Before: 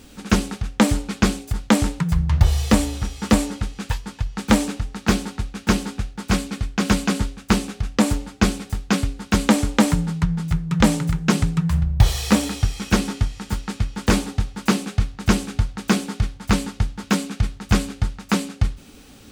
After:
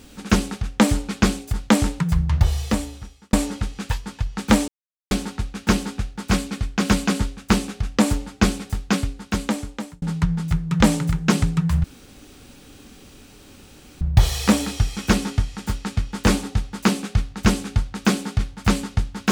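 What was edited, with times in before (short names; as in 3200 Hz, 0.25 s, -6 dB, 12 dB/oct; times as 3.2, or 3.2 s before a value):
2.17–3.33 fade out linear
4.68–5.11 mute
8.81–10.02 fade out linear
11.84 insert room tone 2.17 s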